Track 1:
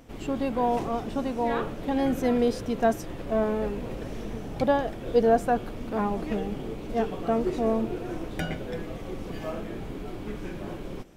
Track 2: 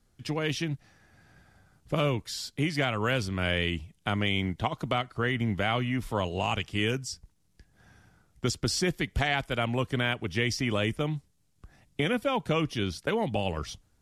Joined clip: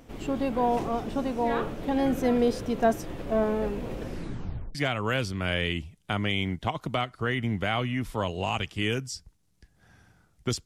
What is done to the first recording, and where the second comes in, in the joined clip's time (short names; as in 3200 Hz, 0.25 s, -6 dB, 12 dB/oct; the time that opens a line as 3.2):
track 1
4.04 tape stop 0.71 s
4.75 switch to track 2 from 2.72 s